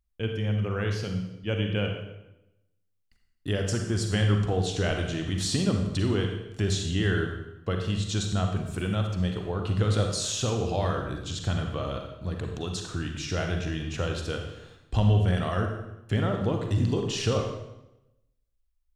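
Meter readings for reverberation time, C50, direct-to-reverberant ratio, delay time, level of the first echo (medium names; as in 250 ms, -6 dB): 0.90 s, 4.5 dB, 3.0 dB, no echo, no echo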